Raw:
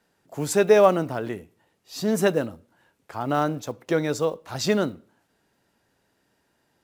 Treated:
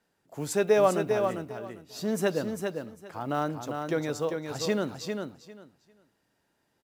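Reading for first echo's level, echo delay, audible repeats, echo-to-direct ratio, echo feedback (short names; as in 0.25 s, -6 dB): -5.5 dB, 0.399 s, 2, -5.5 dB, 18%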